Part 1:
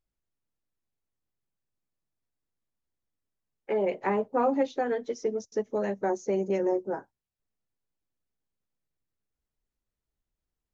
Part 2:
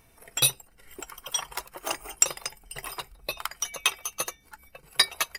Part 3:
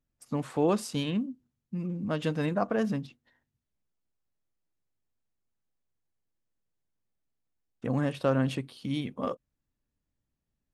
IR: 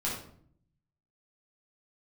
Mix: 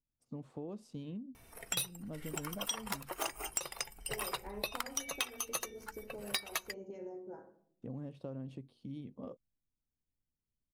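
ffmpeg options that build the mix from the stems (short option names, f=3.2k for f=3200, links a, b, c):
-filter_complex "[0:a]acompressor=threshold=-28dB:ratio=6,adelay=400,volume=-13.5dB,asplit=2[a][b];[b]volume=-12.5dB[c];[1:a]asoftclip=type=hard:threshold=-16.5dB,adelay=1350,volume=0dB[d];[2:a]lowpass=f=1.7k:p=1,volume=-9dB[e];[a][e]amix=inputs=2:normalize=0,equalizer=f=1.6k:t=o:w=1.8:g=-13.5,acompressor=threshold=-40dB:ratio=6,volume=0dB[f];[3:a]atrim=start_sample=2205[g];[c][g]afir=irnorm=-1:irlink=0[h];[d][f][h]amix=inputs=3:normalize=0,acompressor=threshold=-33dB:ratio=8"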